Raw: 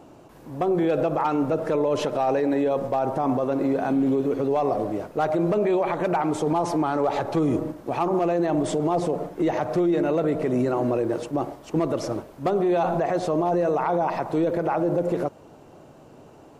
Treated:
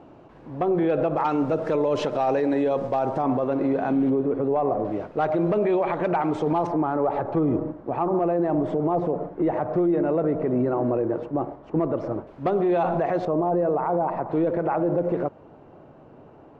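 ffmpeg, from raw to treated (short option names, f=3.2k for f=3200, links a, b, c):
-af "asetnsamples=n=441:p=0,asendcmd='1.17 lowpass f 5400;3.22 lowpass f 3100;4.1 lowpass f 1500;4.85 lowpass f 3200;6.67 lowpass f 1400;12.27 lowpass f 2900;13.25 lowpass f 1200;14.29 lowpass f 2000',lowpass=2.8k"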